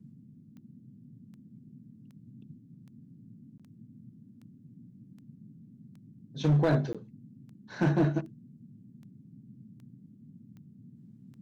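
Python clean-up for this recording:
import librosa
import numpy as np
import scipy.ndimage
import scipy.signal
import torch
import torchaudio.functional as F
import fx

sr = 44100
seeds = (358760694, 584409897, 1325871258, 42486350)

y = fx.fix_declip(x, sr, threshold_db=-19.0)
y = fx.fix_declick_ar(y, sr, threshold=10.0)
y = fx.fix_interpolate(y, sr, at_s=(3.58, 6.93), length_ms=16.0)
y = fx.noise_reduce(y, sr, print_start_s=4.14, print_end_s=4.64, reduce_db=21.0)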